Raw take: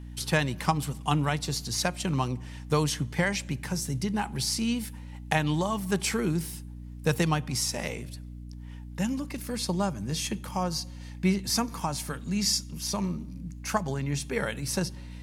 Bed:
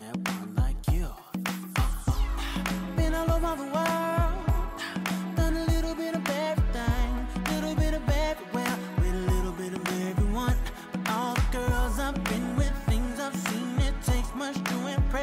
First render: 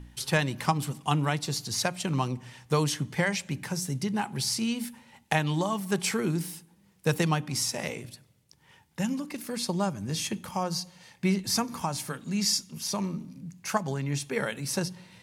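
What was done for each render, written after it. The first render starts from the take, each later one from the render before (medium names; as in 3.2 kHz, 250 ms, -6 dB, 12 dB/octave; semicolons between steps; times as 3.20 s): de-hum 60 Hz, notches 5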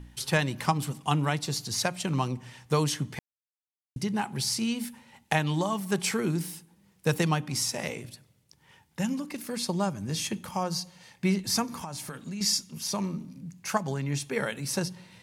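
3.19–3.96 s: mute; 11.66–12.41 s: compression, threshold -33 dBFS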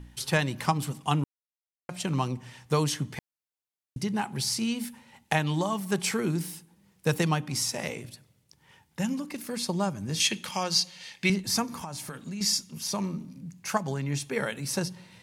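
1.24–1.89 s: mute; 10.20–11.30 s: frequency weighting D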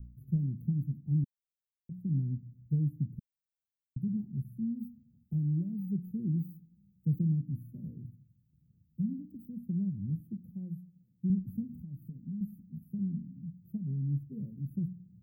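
inverse Chebyshev band-stop 1.1–7 kHz, stop band 80 dB; treble shelf 10 kHz +3.5 dB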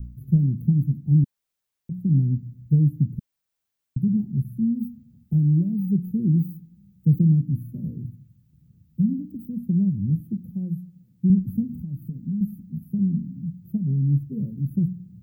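trim +11.5 dB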